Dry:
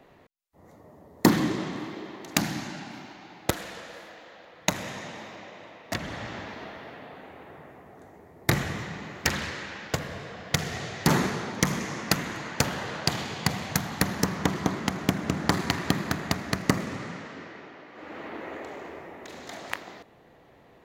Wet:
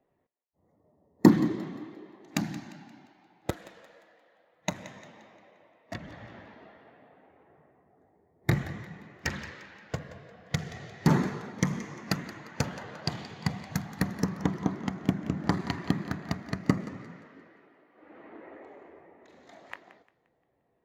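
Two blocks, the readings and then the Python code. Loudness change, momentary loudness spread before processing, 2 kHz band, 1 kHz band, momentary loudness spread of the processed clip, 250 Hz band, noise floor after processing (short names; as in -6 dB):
-2.0 dB, 18 LU, -8.0 dB, -6.5 dB, 21 LU, 0.0 dB, -74 dBFS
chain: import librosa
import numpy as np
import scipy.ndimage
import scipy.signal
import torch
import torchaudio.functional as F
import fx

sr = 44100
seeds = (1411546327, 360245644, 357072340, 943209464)

y = fx.echo_thinned(x, sr, ms=175, feedback_pct=52, hz=420.0, wet_db=-12.0)
y = fx.spectral_expand(y, sr, expansion=1.5)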